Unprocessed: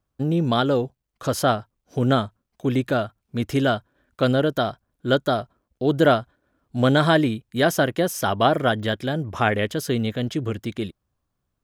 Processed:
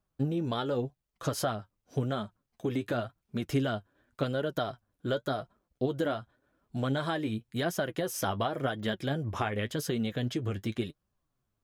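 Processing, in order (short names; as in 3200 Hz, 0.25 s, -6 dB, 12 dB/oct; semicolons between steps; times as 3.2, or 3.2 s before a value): compressor 10:1, threshold -23 dBFS, peak gain reduction 12 dB; flange 0.9 Hz, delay 4.6 ms, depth 6.3 ms, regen +42%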